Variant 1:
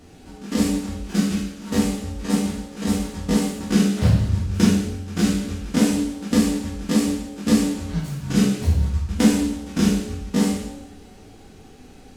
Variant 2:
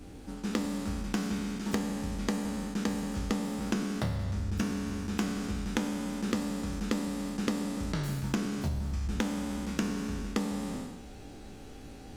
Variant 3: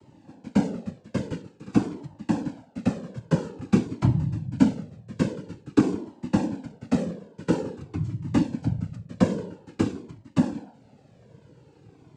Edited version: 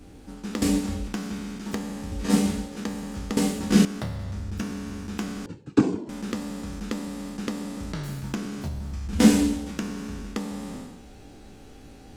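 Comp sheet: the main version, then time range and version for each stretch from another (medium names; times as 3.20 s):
2
0.62–1.08 s: from 1
2.12–2.80 s: from 1
3.37–3.85 s: from 1
5.46–6.09 s: from 3
9.13–9.71 s: from 1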